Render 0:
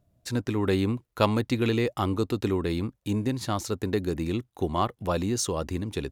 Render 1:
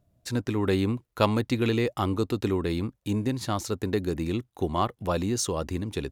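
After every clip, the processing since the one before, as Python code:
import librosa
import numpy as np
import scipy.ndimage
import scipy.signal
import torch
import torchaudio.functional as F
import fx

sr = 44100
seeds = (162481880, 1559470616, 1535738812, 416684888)

y = x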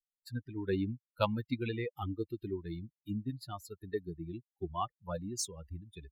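y = fx.bin_expand(x, sr, power=3.0)
y = y * 10.0 ** (-4.0 / 20.0)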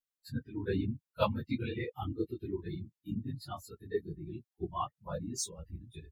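y = fx.phase_scramble(x, sr, seeds[0], window_ms=50)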